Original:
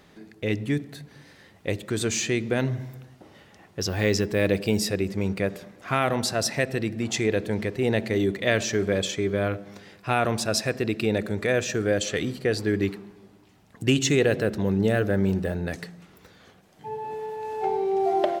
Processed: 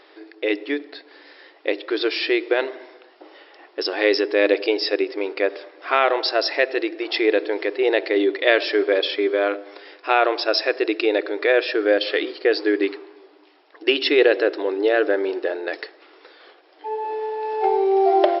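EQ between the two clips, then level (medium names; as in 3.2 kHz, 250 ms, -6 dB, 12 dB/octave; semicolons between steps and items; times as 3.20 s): brick-wall FIR band-pass 290–5500 Hz; +6.5 dB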